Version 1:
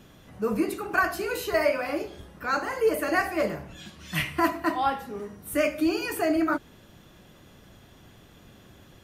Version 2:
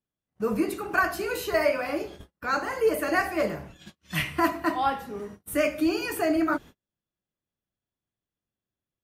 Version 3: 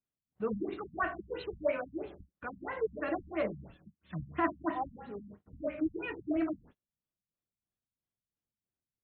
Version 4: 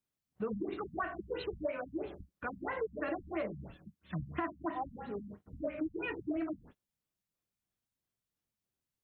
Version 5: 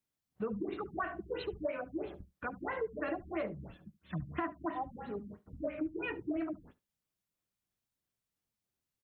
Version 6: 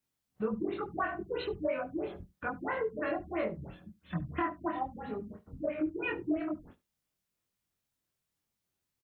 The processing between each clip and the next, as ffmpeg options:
ffmpeg -i in.wav -af "agate=range=-40dB:threshold=-42dB:ratio=16:detection=peak" out.wav
ffmpeg -i in.wav -af "afftfilt=real='re*lt(b*sr/1024,220*pow(4300/220,0.5+0.5*sin(2*PI*3*pts/sr)))':imag='im*lt(b*sr/1024,220*pow(4300/220,0.5+0.5*sin(2*PI*3*pts/sr)))':win_size=1024:overlap=0.75,volume=-6.5dB" out.wav
ffmpeg -i in.wav -af "acompressor=threshold=-36dB:ratio=6,volume=3dB" out.wav
ffmpeg -i in.wav -af "aecho=1:1:72:0.0944" out.wav
ffmpeg -i in.wav -filter_complex "[0:a]asplit=2[link_01][link_02];[link_02]adelay=23,volume=-2dB[link_03];[link_01][link_03]amix=inputs=2:normalize=0,volume=1.5dB" out.wav

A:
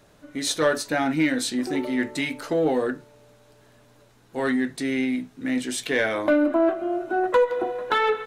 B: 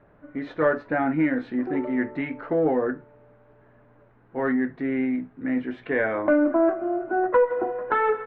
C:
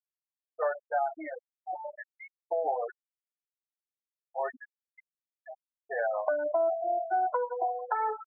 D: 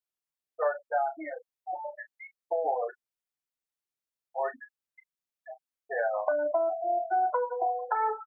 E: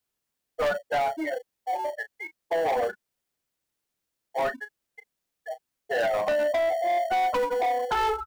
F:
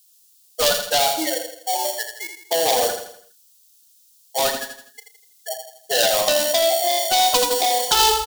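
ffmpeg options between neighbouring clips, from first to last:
ffmpeg -i in.wav -af "lowpass=frequency=1900:width=0.5412,lowpass=frequency=1900:width=1.3066" out.wav
ffmpeg -i in.wav -filter_complex "[0:a]highpass=frequency=710:width_type=q:width=4.3,afftfilt=real='re*gte(hypot(re,im),0.178)':imag='im*gte(hypot(re,im),0.178)':win_size=1024:overlap=0.75,acrossover=split=930|2300[link_01][link_02][link_03];[link_01]acompressor=threshold=-21dB:ratio=4[link_04];[link_02]acompressor=threshold=-28dB:ratio=4[link_05];[link_03]acompressor=threshold=-47dB:ratio=4[link_06];[link_04][link_05][link_06]amix=inputs=3:normalize=0,volume=-7.5dB" out.wav
ffmpeg -i in.wav -filter_complex "[0:a]asplit=2[link_01][link_02];[link_02]adelay=34,volume=-12.5dB[link_03];[link_01][link_03]amix=inputs=2:normalize=0,volume=1dB" out.wav
ffmpeg -i in.wav -filter_complex "[0:a]asplit=2[link_01][link_02];[link_02]acrusher=samples=35:mix=1:aa=0.000001,volume=-11.5dB[link_03];[link_01][link_03]amix=inputs=2:normalize=0,asoftclip=type=tanh:threshold=-30.5dB,volume=9dB" out.wav
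ffmpeg -i in.wav -filter_complex "[0:a]aexciter=amount=9.7:drive=5.9:freq=3100,asplit=2[link_01][link_02];[link_02]aecho=0:1:82|164|246|328|410:0.447|0.197|0.0865|0.0381|0.0167[link_03];[link_01][link_03]amix=inputs=2:normalize=0,volume=4dB" out.wav

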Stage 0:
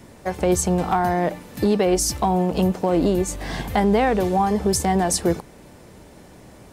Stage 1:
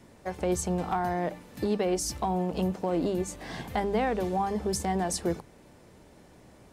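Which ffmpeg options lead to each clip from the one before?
ffmpeg -i in.wav -af "highshelf=frequency=11000:gain=-5.5,bandreject=frequency=50:width_type=h:width=6,bandreject=frequency=100:width_type=h:width=6,bandreject=frequency=150:width_type=h:width=6,bandreject=frequency=200:width_type=h:width=6,volume=-8.5dB" out.wav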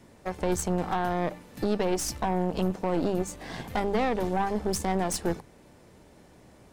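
ffmpeg -i in.wav -af "aeval=exprs='0.178*(cos(1*acos(clip(val(0)/0.178,-1,1)))-cos(1*PI/2))+0.02*(cos(6*acos(clip(val(0)/0.178,-1,1)))-cos(6*PI/2))':channel_layout=same" out.wav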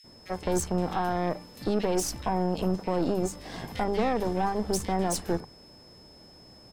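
ffmpeg -i in.wav -filter_complex "[0:a]aeval=exprs='val(0)+0.00224*sin(2*PI*5200*n/s)':channel_layout=same,acrossover=split=2100[link_01][link_02];[link_01]adelay=40[link_03];[link_03][link_02]amix=inputs=2:normalize=0" out.wav

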